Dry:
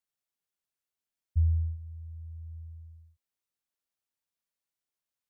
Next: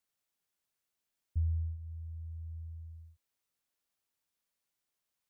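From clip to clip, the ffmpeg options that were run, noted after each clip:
ffmpeg -i in.wav -af "acompressor=threshold=-53dB:ratio=1.5,volume=4dB" out.wav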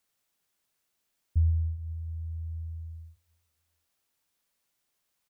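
ffmpeg -i in.wav -af "aecho=1:1:142|284|426|568|710:0.133|0.0787|0.0464|0.0274|0.0162,volume=7.5dB" out.wav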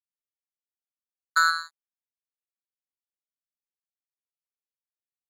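ffmpeg -i in.wav -af "aeval=exprs='val(0)*sin(2*PI*1400*n/s)':channel_layout=same,acrusher=bits=3:mix=0:aa=0.5,volume=4.5dB" out.wav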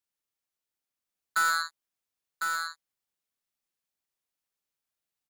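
ffmpeg -i in.wav -af "asoftclip=type=hard:threshold=-26dB,aecho=1:1:1053:0.562,volume=6dB" out.wav

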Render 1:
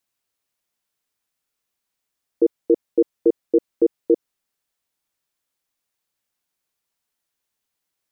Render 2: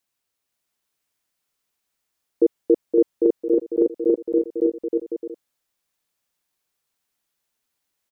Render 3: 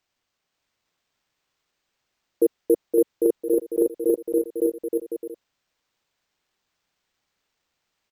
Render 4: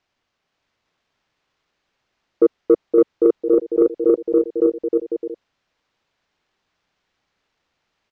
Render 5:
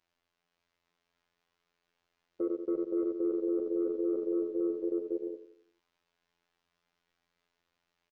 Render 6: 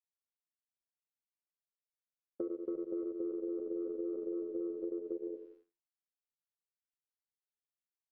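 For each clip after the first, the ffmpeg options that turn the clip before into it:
ffmpeg -i in.wav -af "aecho=1:1:520|832|1019|1132|1199:0.631|0.398|0.251|0.158|0.1" out.wav
ffmpeg -i in.wav -af "equalizer=frequency=260:width_type=o:width=0.68:gain=-7,acrusher=samples=4:mix=1:aa=0.000001" out.wav
ffmpeg -i in.wav -af "lowpass=frequency=7200:width=0.5412,lowpass=frequency=7200:width=1.3066,highshelf=frequency=5700:gain=-12,acontrast=61" out.wav
ffmpeg -i in.wav -filter_complex "[0:a]afftfilt=real='hypot(re,im)*cos(PI*b)':imag='0':win_size=2048:overlap=0.75,asplit=2[link_01][link_02];[link_02]adelay=88,lowpass=frequency=1100:poles=1,volume=-11dB,asplit=2[link_03][link_04];[link_04]adelay=88,lowpass=frequency=1100:poles=1,volume=0.47,asplit=2[link_05][link_06];[link_06]adelay=88,lowpass=frequency=1100:poles=1,volume=0.47,asplit=2[link_07][link_08];[link_08]adelay=88,lowpass=frequency=1100:poles=1,volume=0.47,asplit=2[link_09][link_10];[link_10]adelay=88,lowpass=frequency=1100:poles=1,volume=0.47[link_11];[link_03][link_05][link_07][link_09][link_11]amix=inputs=5:normalize=0[link_12];[link_01][link_12]amix=inputs=2:normalize=0,alimiter=limit=-18.5dB:level=0:latency=1:release=29,volume=-4.5dB" out.wav
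ffmpeg -i in.wav -af "lowpass=frequency=1200:poles=1,agate=range=-33dB:threshold=-58dB:ratio=3:detection=peak,acompressor=threshold=-38dB:ratio=6,volume=2.5dB" out.wav

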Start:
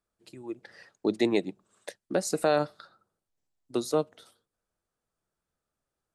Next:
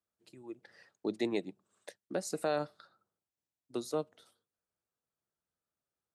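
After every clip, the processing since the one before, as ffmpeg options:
ffmpeg -i in.wav -af "highpass=71,volume=-8dB" out.wav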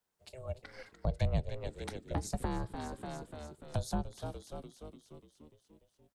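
ffmpeg -i in.wav -filter_complex "[0:a]asplit=8[link_01][link_02][link_03][link_04][link_05][link_06][link_07][link_08];[link_02]adelay=294,afreqshift=-85,volume=-12dB[link_09];[link_03]adelay=588,afreqshift=-170,volume=-16.6dB[link_10];[link_04]adelay=882,afreqshift=-255,volume=-21.2dB[link_11];[link_05]adelay=1176,afreqshift=-340,volume=-25.7dB[link_12];[link_06]adelay=1470,afreqshift=-425,volume=-30.3dB[link_13];[link_07]adelay=1764,afreqshift=-510,volume=-34.9dB[link_14];[link_08]adelay=2058,afreqshift=-595,volume=-39.5dB[link_15];[link_01][link_09][link_10][link_11][link_12][link_13][link_14][link_15]amix=inputs=8:normalize=0,aeval=exprs='val(0)*sin(2*PI*260*n/s)':channel_layout=same,acrossover=split=190[link_16][link_17];[link_17]acompressor=threshold=-47dB:ratio=6[link_18];[link_16][link_18]amix=inputs=2:normalize=0,volume=9.5dB" out.wav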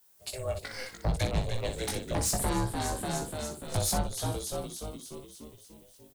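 ffmpeg -i in.wav -filter_complex "[0:a]aemphasis=mode=production:type=75kf,asoftclip=type=tanh:threshold=-32.5dB,asplit=2[link_01][link_02];[link_02]aecho=0:1:18|60:0.631|0.447[link_03];[link_01][link_03]amix=inputs=2:normalize=0,volume=7.5dB" out.wav

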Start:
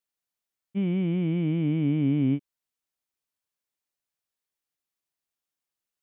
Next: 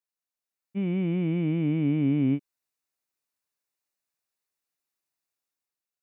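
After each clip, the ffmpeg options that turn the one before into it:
ffmpeg -i in.wav -af "lowshelf=frequency=160:gain=-5,bandreject=frequency=3200:width=7.4,dynaudnorm=framelen=150:gausssize=9:maxgain=7dB,volume=-5.5dB" out.wav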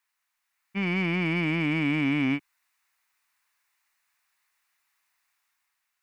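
ffmpeg -i in.wav -filter_complex "[0:a]equalizer=frequency=125:width_type=o:width=1:gain=-12,equalizer=frequency=250:width_type=o:width=1:gain=-5,equalizer=frequency=500:width_type=o:width=1:gain=-11,equalizer=frequency=1000:width_type=o:width=1:gain=8,equalizer=frequency=2000:width_type=o:width=1:gain=10,asplit=2[link_01][link_02];[link_02]asoftclip=type=tanh:threshold=-37.5dB,volume=-5dB[link_03];[link_01][link_03]amix=inputs=2:normalize=0,volume=5.5dB" out.wav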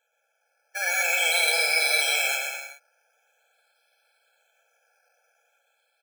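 ffmpeg -i in.wav -filter_complex "[0:a]acrusher=samples=9:mix=1:aa=0.000001:lfo=1:lforange=5.4:lforate=0.45,asplit=2[link_01][link_02];[link_02]aecho=0:1:120|216|292.8|354.2|403.4:0.631|0.398|0.251|0.158|0.1[link_03];[link_01][link_03]amix=inputs=2:normalize=0,afftfilt=real='re*eq(mod(floor(b*sr/1024/440),2),1)':imag='im*eq(mod(floor(b*sr/1024/440),2),1)':win_size=1024:overlap=0.75,volume=8.5dB" out.wav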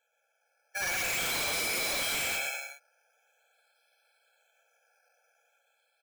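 ffmpeg -i in.wav -af "aeval=exprs='0.0631*(abs(mod(val(0)/0.0631+3,4)-2)-1)':channel_layout=same,volume=-2.5dB" out.wav

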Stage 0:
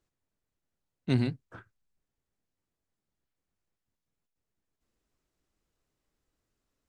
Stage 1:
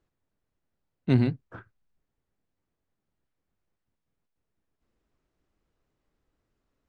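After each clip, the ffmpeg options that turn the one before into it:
ffmpeg -i in.wav -af "aemphasis=mode=reproduction:type=75fm,volume=4dB" out.wav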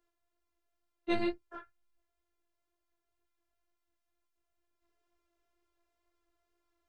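ffmpeg -i in.wav -af "afftfilt=real='hypot(re,im)*cos(PI*b)':imag='0':win_size=512:overlap=0.75,lowshelf=frequency=340:width_type=q:width=1.5:gain=-7.5,flanger=delay=16.5:depth=2.3:speed=2.1,volume=6.5dB" out.wav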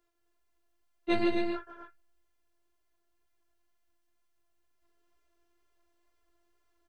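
ffmpeg -i in.wav -af "aecho=1:1:151.6|218.7|262.4:0.447|0.251|0.447,volume=3dB" out.wav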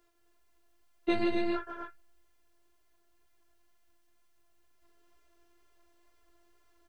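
ffmpeg -i in.wav -af "acompressor=threshold=-32dB:ratio=6,volume=7dB" out.wav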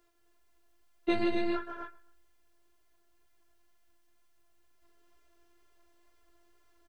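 ffmpeg -i in.wav -af "aecho=1:1:130|260:0.0794|0.0278" out.wav

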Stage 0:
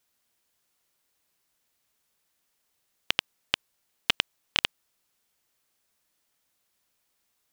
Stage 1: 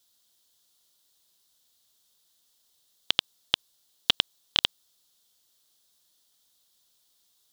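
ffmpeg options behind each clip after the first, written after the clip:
ffmpeg -i in.wav -filter_complex "[0:a]highshelf=frequency=2900:width_type=q:width=3:gain=6.5,acrossover=split=3200[link_01][link_02];[link_02]alimiter=limit=-13.5dB:level=0:latency=1:release=59[link_03];[link_01][link_03]amix=inputs=2:normalize=0" out.wav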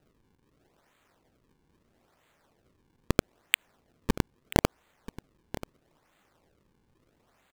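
ffmpeg -i in.wav -af "acrusher=samples=39:mix=1:aa=0.000001:lfo=1:lforange=62.4:lforate=0.77,aecho=1:1:984:0.158" out.wav

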